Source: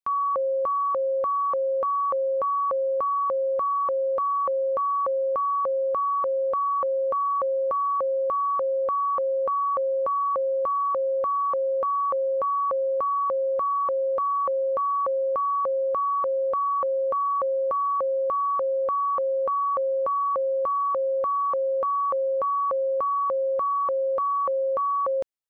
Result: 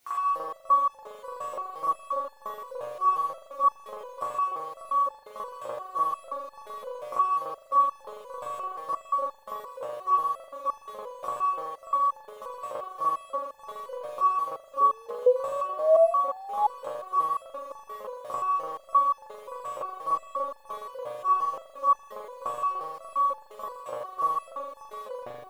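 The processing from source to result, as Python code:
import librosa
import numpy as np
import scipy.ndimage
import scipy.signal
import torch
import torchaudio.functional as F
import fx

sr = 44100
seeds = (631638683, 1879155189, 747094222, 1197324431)

p1 = fx.cvsd(x, sr, bps=64000)
p2 = fx.dereverb_blind(p1, sr, rt60_s=0.72)
p3 = fx.quant_dither(p2, sr, seeds[0], bits=10, dither='triangular')
p4 = fx.dereverb_blind(p3, sr, rt60_s=0.52)
p5 = p4 + fx.echo_single(p4, sr, ms=87, db=-8.5, dry=0)
p6 = fx.rev_spring(p5, sr, rt60_s=1.2, pass_ms=(40,), chirp_ms=40, drr_db=-9.0)
p7 = fx.spec_paint(p6, sr, seeds[1], shape='rise', start_s=14.8, length_s=1.87, low_hz=420.0, high_hz=850.0, level_db=-19.0)
p8 = fx.resonator_held(p7, sr, hz=5.7, low_hz=120.0, high_hz=870.0)
y = p8 * librosa.db_to_amplitude(5.5)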